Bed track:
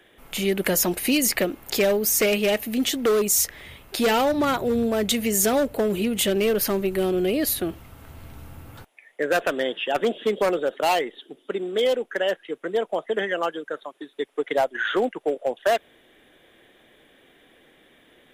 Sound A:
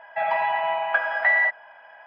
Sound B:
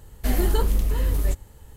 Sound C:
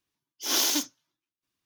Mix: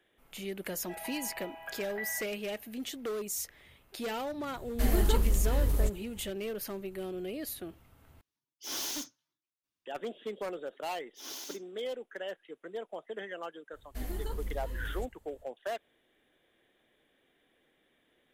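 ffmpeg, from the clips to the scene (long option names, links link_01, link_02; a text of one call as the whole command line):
ffmpeg -i bed.wav -i cue0.wav -i cue1.wav -i cue2.wav -filter_complex "[2:a]asplit=2[link_01][link_02];[3:a]asplit=2[link_03][link_04];[0:a]volume=-15.5dB[link_05];[1:a]equalizer=frequency=1100:width=0.53:gain=-13[link_06];[link_03]asoftclip=type=hard:threshold=-25dB[link_07];[link_04]asoftclip=type=tanh:threshold=-14dB[link_08];[link_05]asplit=2[link_09][link_10];[link_09]atrim=end=8.214[link_11];[link_07]atrim=end=1.65,asetpts=PTS-STARTPTS,volume=-8dB[link_12];[link_10]atrim=start=9.856[link_13];[link_06]atrim=end=2.06,asetpts=PTS-STARTPTS,volume=-11dB,afade=type=in:duration=0.004:curve=hsin,afade=type=out:start_time=2.056:duration=0.004:curve=hsin,adelay=730[link_14];[link_01]atrim=end=1.76,asetpts=PTS-STARTPTS,volume=-5dB,afade=type=in:duration=0.004:curve=hsin,afade=type=out:start_time=1.756:duration=0.004:curve=hsin,adelay=4550[link_15];[link_08]atrim=end=1.65,asetpts=PTS-STARTPTS,volume=-17.5dB,afade=type=in:duration=0.004:curve=hsin,afade=type=out:start_time=1.646:duration=0.004:curve=hsin,adelay=473634S[link_16];[link_02]atrim=end=1.76,asetpts=PTS-STARTPTS,volume=-16dB,afade=type=in:duration=0.05,afade=type=out:start_time=1.71:duration=0.05,adelay=13710[link_17];[link_11][link_12]acrossfade=duration=0.004:curve1=hsin:curve2=hsin[link_18];[link_18][link_13]acrossfade=duration=0.004:curve1=hsin:curve2=hsin[link_19];[link_19][link_14][link_15][link_16][link_17]amix=inputs=5:normalize=0" out.wav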